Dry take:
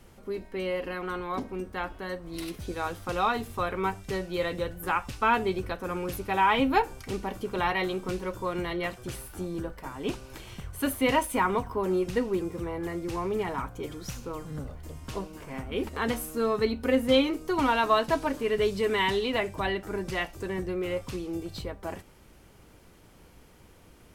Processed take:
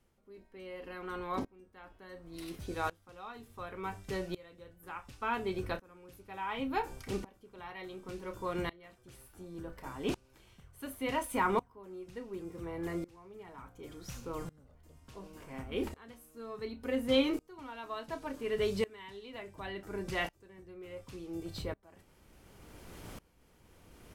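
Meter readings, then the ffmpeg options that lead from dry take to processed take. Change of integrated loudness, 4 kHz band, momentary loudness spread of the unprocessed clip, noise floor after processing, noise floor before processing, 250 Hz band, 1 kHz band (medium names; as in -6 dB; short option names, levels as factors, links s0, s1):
-9.0 dB, -9.0 dB, 13 LU, -66 dBFS, -55 dBFS, -8.5 dB, -11.0 dB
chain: -filter_complex "[0:a]areverse,acompressor=mode=upward:threshold=0.0282:ratio=2.5,areverse,asplit=2[s0][s1];[s1]adelay=30,volume=0.237[s2];[s0][s2]amix=inputs=2:normalize=0,aeval=exprs='val(0)*pow(10,-25*if(lt(mod(-0.69*n/s,1),2*abs(-0.69)/1000),1-mod(-0.69*n/s,1)/(2*abs(-0.69)/1000),(mod(-0.69*n/s,1)-2*abs(-0.69)/1000)/(1-2*abs(-0.69)/1000))/20)':c=same,volume=0.794"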